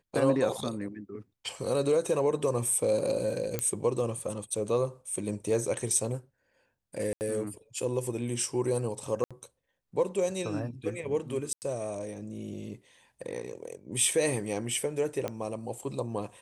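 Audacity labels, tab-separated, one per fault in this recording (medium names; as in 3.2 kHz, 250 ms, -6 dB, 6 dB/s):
3.590000	3.590000	pop -14 dBFS
7.130000	7.210000	dropout 79 ms
9.240000	9.310000	dropout 66 ms
11.530000	11.620000	dropout 89 ms
15.280000	15.280000	pop -18 dBFS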